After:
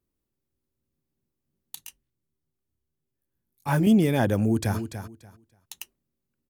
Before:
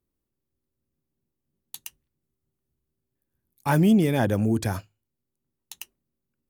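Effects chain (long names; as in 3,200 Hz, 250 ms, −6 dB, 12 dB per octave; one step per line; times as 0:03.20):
0:01.75–0:03.87: micro pitch shift up and down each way 18 cents
0:04.38–0:04.78: delay throw 290 ms, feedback 20%, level −9.5 dB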